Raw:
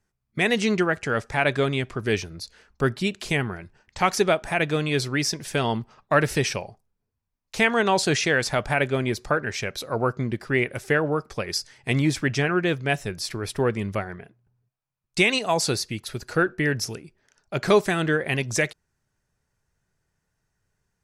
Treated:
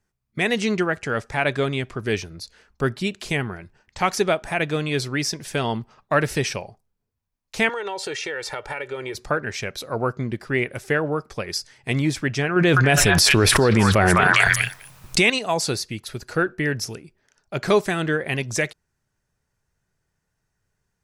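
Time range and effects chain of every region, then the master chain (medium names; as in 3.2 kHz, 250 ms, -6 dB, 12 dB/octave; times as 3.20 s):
7.69–9.15 s: tone controls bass -13 dB, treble -5 dB + comb 2.2 ms, depth 70% + compression 5:1, threshold -26 dBFS
12.56–15.30 s: repeats whose band climbs or falls 203 ms, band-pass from 1.2 kHz, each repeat 1.4 oct, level -2.5 dB + level flattener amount 100%
whole clip: none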